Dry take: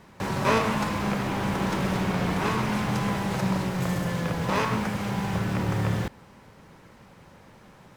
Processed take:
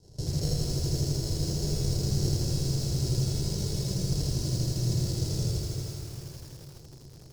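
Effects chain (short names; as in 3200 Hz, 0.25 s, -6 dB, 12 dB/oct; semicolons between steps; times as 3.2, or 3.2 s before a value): half-waves squared off; pump 140 bpm, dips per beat 1, -9 dB, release 0.105 s; dark delay 0.112 s, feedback 58%, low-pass 1200 Hz, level -21 dB; compressor 16:1, threshold -23 dBFS, peak gain reduction 9 dB; notches 50/100/150/200/250/300 Hz; sample-and-hold 40×; dynamic EQ 810 Hz, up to -7 dB, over -46 dBFS, Q 1; diffused feedback echo 0.457 s, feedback 47%, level -6 dB; speed mistake 44.1 kHz file played as 48 kHz; EQ curve 150 Hz 0 dB, 220 Hz -21 dB, 350 Hz -5 dB, 1900 Hz -29 dB, 3100 Hz -18 dB, 5000 Hz +5 dB, 16000 Hz -14 dB; lo-fi delay 81 ms, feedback 80%, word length 8-bit, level -3 dB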